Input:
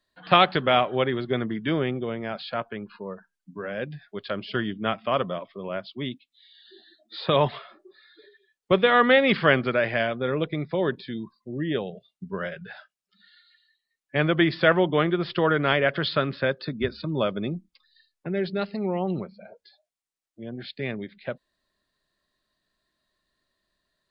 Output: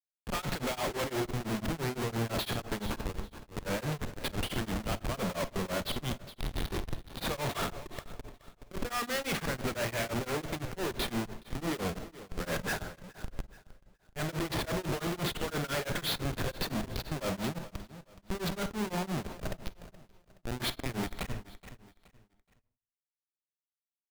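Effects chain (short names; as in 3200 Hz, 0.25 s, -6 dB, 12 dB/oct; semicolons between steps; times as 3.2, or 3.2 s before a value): HPF 100 Hz 12 dB/oct; bell 2900 Hz +5 dB 2.5 oct; in parallel at -1 dB: compressor 4:1, threshold -33 dBFS, peak gain reduction 20 dB; on the sum: auto swell 0.269 s; vocal rider within 5 dB 2 s; Schmitt trigger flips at -33 dBFS; feedback echo 0.423 s, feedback 32%, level -15 dB; on a send at -9.5 dB: reverb RT60 0.35 s, pre-delay 45 ms; on the sum: beating tremolo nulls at 5.9 Hz; gain -4.5 dB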